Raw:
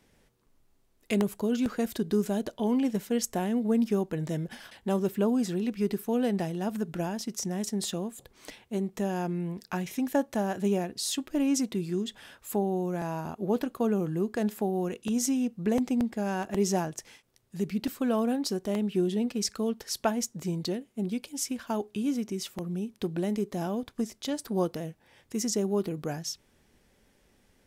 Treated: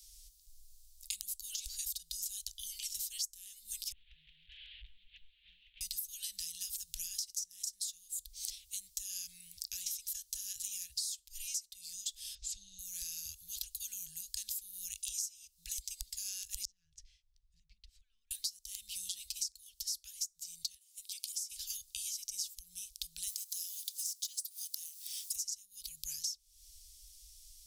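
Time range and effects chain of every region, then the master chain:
3.92–5.81 s: one-bit delta coder 16 kbps, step -39.5 dBFS + bass shelf 160 Hz -9 dB + compression 16:1, threshold -41 dBFS
12.35–12.79 s: low-pass 6.2 kHz 24 dB/octave + bass shelf 330 Hz +6.5 dB
16.65–18.31 s: low-pass 1.1 kHz + compression 8:1, threshold -42 dBFS
20.74–21.50 s: high-pass 410 Hz 24 dB/octave + compression 5:1, threshold -43 dBFS
23.27–25.36 s: companding laws mixed up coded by mu + high-pass 1.5 kHz + treble shelf 6.5 kHz +8.5 dB
whole clip: inverse Chebyshev band-stop 230–1000 Hz, stop band 80 dB; bass shelf 96 Hz -7.5 dB; compression 16:1, threshold -53 dBFS; trim +17 dB

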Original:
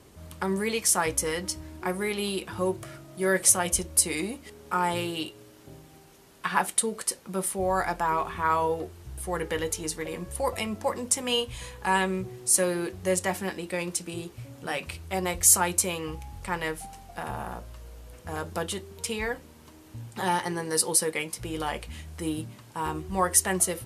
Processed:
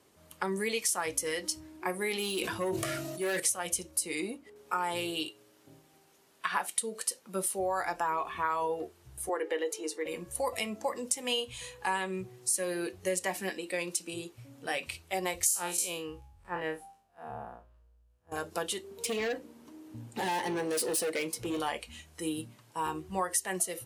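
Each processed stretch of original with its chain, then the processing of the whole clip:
2.11–3.40 s: hard clipper -24.5 dBFS + decay stretcher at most 22 dB/s
3.91–4.56 s: treble shelf 2.3 kHz -4.5 dB + tape noise reduction on one side only decoder only
9.29–10.06 s: high-pass 330 Hz 24 dB/octave + tilt EQ -2.5 dB/octave
15.46–18.32 s: spectral blur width 85 ms + peaking EQ 2.1 kHz -6.5 dB 0.22 oct + three bands expanded up and down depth 100%
18.84–21.60 s: peaking EQ 330 Hz +8 dB 2.8 oct + overload inside the chain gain 26.5 dB
whole clip: spectral noise reduction 8 dB; high-pass 320 Hz 6 dB/octave; compression 6:1, threshold -27 dBFS

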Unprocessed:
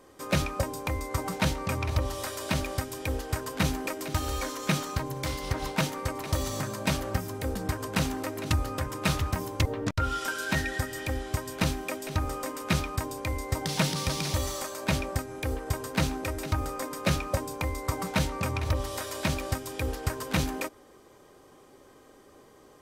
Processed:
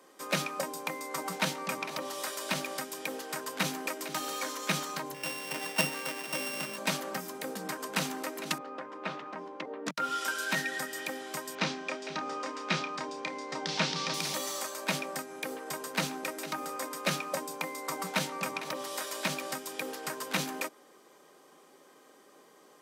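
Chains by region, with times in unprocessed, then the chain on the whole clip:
5.14–6.78 s: sorted samples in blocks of 16 samples + three bands expanded up and down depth 40%
8.58–9.86 s: high-pass 260 Hz + tape spacing loss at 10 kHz 36 dB
11.55–14.14 s: low-pass 5.9 kHz 24 dB/octave + doubling 30 ms -8.5 dB
whole clip: steep high-pass 150 Hz 72 dB/octave; bass shelf 490 Hz -8 dB

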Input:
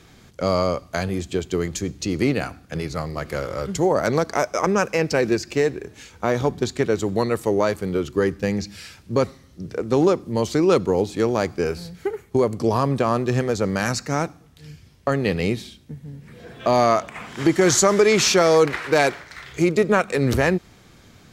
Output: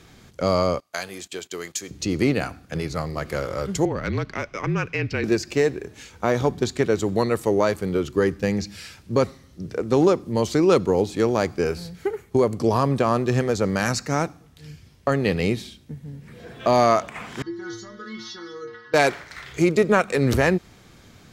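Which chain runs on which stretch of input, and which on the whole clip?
0.80–1.91 s: high-pass 1.2 kHz 6 dB/octave + gate -46 dBFS, range -14 dB + treble shelf 9 kHz +5.5 dB
3.85–5.24 s: FFT filter 190 Hz 0 dB, 730 Hz -13 dB, 2.7 kHz +2 dB, 8.4 kHz -20 dB + frequency shift -37 Hz
17.42–18.94 s: distance through air 82 m + static phaser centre 2.4 kHz, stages 6 + inharmonic resonator 110 Hz, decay 0.66 s, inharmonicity 0.008
whole clip: none

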